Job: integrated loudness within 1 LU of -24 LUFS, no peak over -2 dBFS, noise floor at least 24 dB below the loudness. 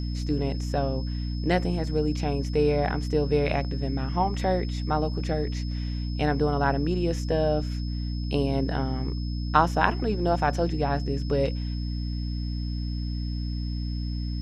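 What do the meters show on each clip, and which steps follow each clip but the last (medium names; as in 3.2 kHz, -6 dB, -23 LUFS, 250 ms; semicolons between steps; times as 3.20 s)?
hum 60 Hz; highest harmonic 300 Hz; hum level -27 dBFS; steady tone 5.2 kHz; tone level -44 dBFS; loudness -27.5 LUFS; peak level -3.0 dBFS; loudness target -24.0 LUFS
-> hum notches 60/120/180/240/300 Hz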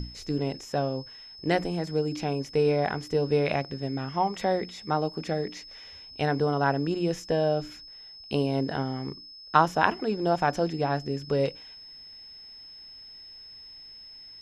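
hum not found; steady tone 5.2 kHz; tone level -44 dBFS
-> band-stop 5.2 kHz, Q 30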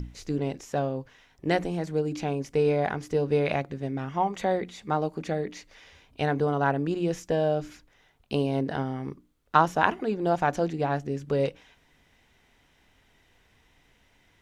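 steady tone not found; loudness -28.0 LUFS; peak level -3.0 dBFS; loudness target -24.0 LUFS
-> trim +4 dB; peak limiter -2 dBFS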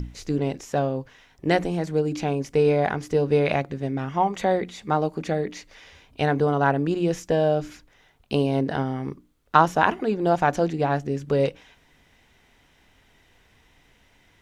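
loudness -24.0 LUFS; peak level -2.0 dBFS; noise floor -60 dBFS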